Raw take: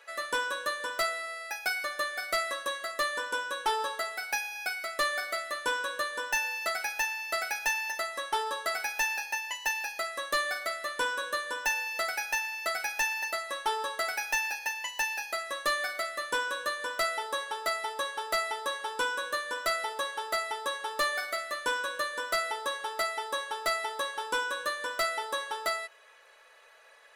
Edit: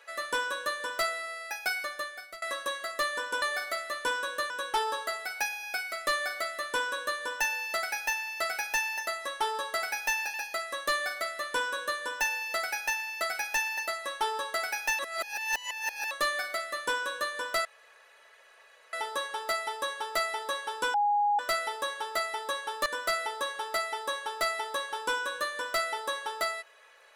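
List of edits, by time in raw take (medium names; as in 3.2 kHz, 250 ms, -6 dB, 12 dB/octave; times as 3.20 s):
1.75–2.42 s: fade out, to -23.5 dB
9.26–9.79 s: delete
14.44–15.56 s: reverse
17.10 s: insert room tone 1.28 s
19.11–19.56 s: bleep 824 Hz -22.5 dBFS
21.03–22.11 s: move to 3.42 s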